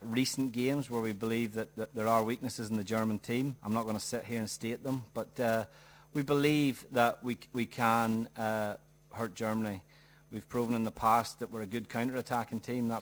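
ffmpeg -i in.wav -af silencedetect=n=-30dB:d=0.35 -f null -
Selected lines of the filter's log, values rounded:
silence_start: 5.63
silence_end: 6.16 | silence_duration: 0.53
silence_start: 8.72
silence_end: 9.19 | silence_duration: 0.46
silence_start: 9.74
silence_end: 10.36 | silence_duration: 0.62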